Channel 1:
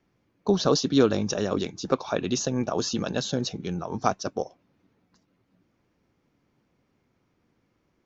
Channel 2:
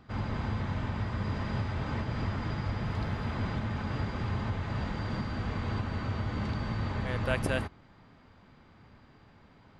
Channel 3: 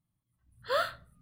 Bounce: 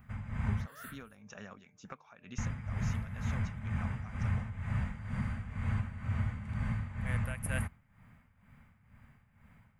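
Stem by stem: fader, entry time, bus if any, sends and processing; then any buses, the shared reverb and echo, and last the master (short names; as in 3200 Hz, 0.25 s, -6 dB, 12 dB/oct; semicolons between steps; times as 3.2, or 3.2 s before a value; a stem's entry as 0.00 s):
-1.5 dB, 0.00 s, no send, tone controls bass -13 dB, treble -9 dB; de-hum 150.1 Hz, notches 5; compressor 6:1, threshold -30 dBFS, peak gain reduction 13 dB
+2.0 dB, 0.00 s, muted 0.66–2.38, no send, bell 560 Hz +4.5 dB 1.2 oct
+0.5 dB, 0.00 s, no send, gate with hold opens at -56 dBFS; limiter -29 dBFS, peak gain reduction 10 dB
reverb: off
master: EQ curve 110 Hz 0 dB, 230 Hz -4 dB, 320 Hz -22 dB, 2200 Hz -1 dB, 4400 Hz -20 dB, 10000 Hz +10 dB; tremolo 2.1 Hz, depth 72%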